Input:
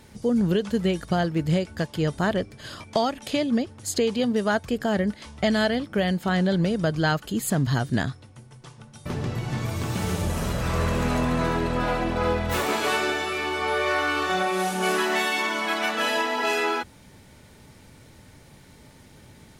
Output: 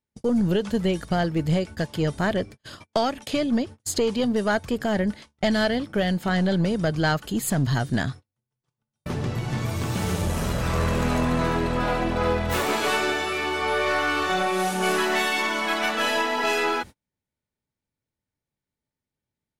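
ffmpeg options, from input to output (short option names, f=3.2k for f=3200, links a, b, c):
-af "aeval=exprs='0.266*(cos(1*acos(clip(val(0)/0.266,-1,1)))-cos(1*PI/2))+0.0422*(cos(2*acos(clip(val(0)/0.266,-1,1)))-cos(2*PI/2))+0.00944*(cos(5*acos(clip(val(0)/0.266,-1,1)))-cos(5*PI/2))':c=same,agate=range=-40dB:threshold=-36dB:ratio=16:detection=peak"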